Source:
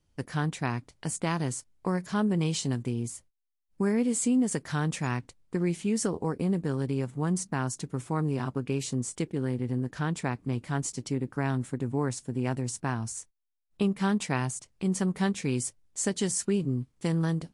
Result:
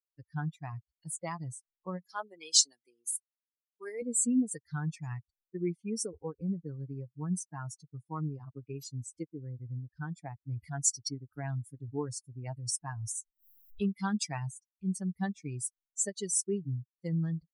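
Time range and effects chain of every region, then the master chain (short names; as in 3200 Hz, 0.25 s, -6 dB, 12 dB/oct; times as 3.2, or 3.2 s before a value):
2.09–4.02 HPF 370 Hz + high shelf 4400 Hz +9.5 dB
10.62–14.32 high shelf 3200 Hz +5.5 dB + upward compressor, threshold -29 dBFS
whole clip: per-bin expansion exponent 3; resonant high shelf 3700 Hz +6.5 dB, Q 3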